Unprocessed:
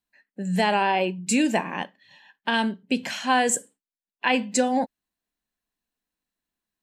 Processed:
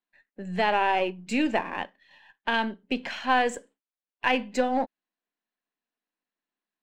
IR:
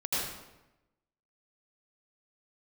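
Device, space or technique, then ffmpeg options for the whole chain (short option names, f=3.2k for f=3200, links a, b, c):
crystal radio: -af "highpass=260,lowpass=3.2k,aeval=exprs='if(lt(val(0),0),0.708*val(0),val(0))':c=same"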